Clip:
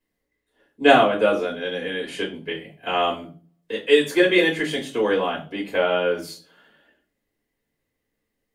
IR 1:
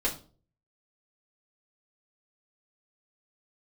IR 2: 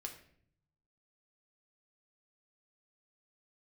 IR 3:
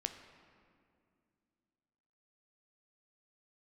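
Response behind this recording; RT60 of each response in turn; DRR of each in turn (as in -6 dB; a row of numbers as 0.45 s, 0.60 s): 1; 0.40 s, 0.60 s, 2.3 s; -4.5 dB, 2.5 dB, 6.5 dB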